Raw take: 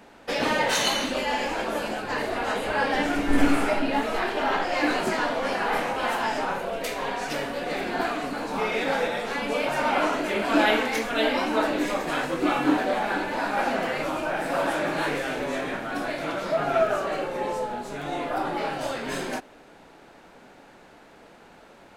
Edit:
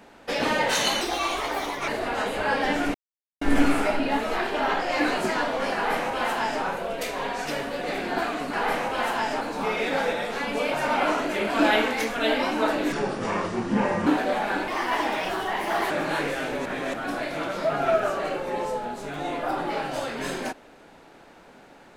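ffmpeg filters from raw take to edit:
ffmpeg -i in.wav -filter_complex "[0:a]asplit=12[link_01][link_02][link_03][link_04][link_05][link_06][link_07][link_08][link_09][link_10][link_11][link_12];[link_01]atrim=end=1.014[link_13];[link_02]atrim=start=1.01:end=2.18,asetpts=PTS-STARTPTS,asetrate=59094,aresample=44100,atrim=end_sample=38505,asetpts=PTS-STARTPTS[link_14];[link_03]atrim=start=2.176:end=3.24,asetpts=PTS-STARTPTS,afade=type=out:start_time=1.06:duration=0.004:curve=hsin,apad=pad_dur=0.47[link_15];[link_04]atrim=start=3.24:end=8.362,asetpts=PTS-STARTPTS,afade=type=in:duration=0.004:curve=hsin[link_16];[link_05]atrim=start=5.578:end=6.462[link_17];[link_06]atrim=start=8.358:end=11.874[link_18];[link_07]atrim=start=11.87:end=12.67,asetpts=PTS-STARTPTS,asetrate=30870,aresample=44100[link_19];[link_08]atrim=start=12.666:end=13.284[link_20];[link_09]atrim=start=13.28:end=14.78,asetpts=PTS-STARTPTS,asetrate=53802,aresample=44100,atrim=end_sample=54221,asetpts=PTS-STARTPTS[link_21];[link_10]atrim=start=14.776:end=15.532[link_22];[link_11]atrim=start=15.528:end=15.812,asetpts=PTS-STARTPTS,areverse[link_23];[link_12]atrim=start=15.808[link_24];[link_13][link_14]acrossfade=duration=0.004:curve1=hsin:curve2=hsin[link_25];[link_15][link_16]concat=n=2:v=0:a=1[link_26];[link_25][link_26]acrossfade=duration=0.004:curve1=hsin:curve2=hsin[link_27];[link_27][link_17]acrossfade=duration=0.004:curve1=hsin:curve2=hsin[link_28];[link_28][link_18]acrossfade=duration=0.004:curve1=hsin:curve2=hsin[link_29];[link_29][link_19]acrossfade=duration=0.004:curve1=hsin:curve2=hsin[link_30];[link_30][link_20]acrossfade=duration=0.004:curve1=hsin:curve2=hsin[link_31];[link_31][link_21]acrossfade=duration=0.004:curve1=hsin:curve2=hsin[link_32];[link_32][link_22]acrossfade=duration=0.004:curve1=hsin:curve2=hsin[link_33];[link_33][link_23]acrossfade=duration=0.004:curve1=hsin:curve2=hsin[link_34];[link_34][link_24]acrossfade=duration=0.004:curve1=hsin:curve2=hsin" out.wav

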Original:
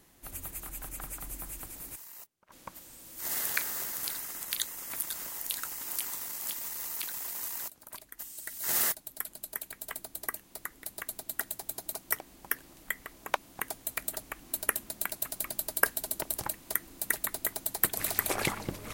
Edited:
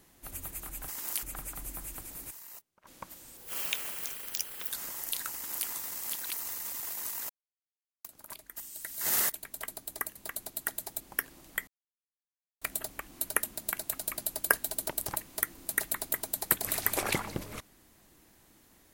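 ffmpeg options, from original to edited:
ffmpeg -i in.wav -filter_complex "[0:a]asplit=13[link_01][link_02][link_03][link_04][link_05][link_06][link_07][link_08][link_09][link_10][link_11][link_12][link_13];[link_01]atrim=end=0.882[link_14];[link_02]atrim=start=5.708:end=6.062[link_15];[link_03]atrim=start=0.878:end=3.024[link_16];[link_04]atrim=start=3.02:end=5.09,asetpts=PTS-STARTPTS,asetrate=67914,aresample=44100,atrim=end_sample=59277,asetpts=PTS-STARTPTS[link_17];[link_05]atrim=start=5.086:end=6.562[link_18];[link_06]atrim=start=6.558:end=7.152,asetpts=PTS-STARTPTS,areverse[link_19];[link_07]atrim=start=7.148:end=7.67,asetpts=PTS-STARTPTS,afade=type=out:start_time=0.518:duration=0.004:curve=hsin,apad=pad_dur=0.75[link_20];[link_08]atrim=start=7.67:end=8.952,asetpts=PTS-STARTPTS,afade=type=in:duration=0.004:curve=hsin[link_21];[link_09]atrim=start=9.598:end=10.432[link_22];[link_10]atrim=start=10.878:end=11.732[link_23];[link_11]atrim=start=12.328:end=13,asetpts=PTS-STARTPTS,afade=type=out:start_time=0.668:duration=0.004:curve=hsin[link_24];[link_12]atrim=start=13:end=13.94,asetpts=PTS-STARTPTS,volume=0[link_25];[link_13]atrim=start=13.94,asetpts=PTS-STARTPTS,afade=type=in:duration=0.004:curve=hsin[link_26];[link_14][link_15]acrossfade=duration=0.004:curve1=hsin:curve2=hsin[link_27];[link_27][link_16]acrossfade=duration=0.004:curve1=hsin:curve2=hsin[link_28];[link_28][link_17]acrossfade=duration=0.004:curve1=hsin:curve2=hsin[link_29];[link_29][link_18]acrossfade=duration=0.004:curve1=hsin:curve2=hsin[link_30];[link_30][link_19]acrossfade=duration=0.004:curve1=hsin:curve2=hsin[link_31];[link_20][link_21]concat=n=2:v=0:a=1[link_32];[link_31][link_32]acrossfade=duration=0.004:curve1=hsin:curve2=hsin[link_33];[link_33][link_22]acrossfade=duration=0.004:curve1=hsin:curve2=hsin[link_34];[link_34][link_23]acrossfade=duration=0.004:curve1=hsin:curve2=hsin[link_35];[link_24][link_25][link_26]concat=n=3:v=0:a=1[link_36];[link_35][link_36]acrossfade=duration=0.004:curve1=hsin:curve2=hsin" out.wav

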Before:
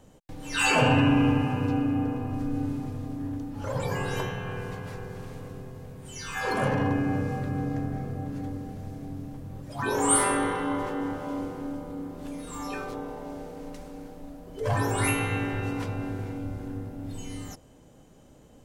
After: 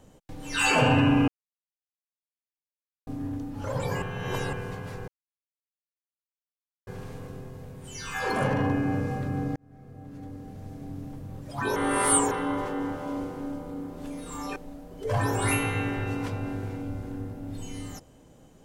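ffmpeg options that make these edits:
ffmpeg -i in.wav -filter_complex "[0:a]asplit=10[link_01][link_02][link_03][link_04][link_05][link_06][link_07][link_08][link_09][link_10];[link_01]atrim=end=1.28,asetpts=PTS-STARTPTS,afade=type=out:start_time=1.276:duration=0.004:curve=hsin[link_11];[link_02]atrim=start=1.28:end=3.07,asetpts=PTS-STARTPTS,volume=0[link_12];[link_03]atrim=start=3.07:end=4.022,asetpts=PTS-STARTPTS,afade=type=in:duration=0.004:curve=hsin[link_13];[link_04]atrim=start=4.018:end=4.532,asetpts=PTS-STARTPTS,areverse[link_14];[link_05]atrim=start=4.528:end=5.08,asetpts=PTS-STARTPTS,afade=type=out:start_time=0.548:duration=0.004:curve=hsin,apad=pad_dur=1.79[link_15];[link_06]atrim=start=5.08:end=7.77,asetpts=PTS-STARTPTS,afade=type=in:duration=0.004:curve=hsin,afade=type=out:start_time=2.686:duration=0.004:curve=hsin[link_16];[link_07]atrim=start=7.77:end=9.972,asetpts=PTS-STARTPTS,afade=type=in:duration=1.52[link_17];[link_08]atrim=start=9.968:end=10.522,asetpts=PTS-STARTPTS,areverse[link_18];[link_09]atrim=start=10.518:end=12.772[link_19];[link_10]atrim=start=14.118[link_20];[link_11][link_12][link_13]concat=n=3:v=0:a=1[link_21];[link_21][link_14]acrossfade=duration=0.004:curve1=hsin:curve2=hsin[link_22];[link_15][link_16][link_17]concat=n=3:v=0:a=1[link_23];[link_22][link_23]acrossfade=duration=0.004:curve1=hsin:curve2=hsin[link_24];[link_24][link_18]acrossfade=duration=0.004:curve1=hsin:curve2=hsin[link_25];[link_25][link_19]acrossfade=duration=0.004:curve1=hsin:curve2=hsin[link_26];[link_26][link_20]acrossfade=duration=0.004:curve1=hsin:curve2=hsin" out.wav

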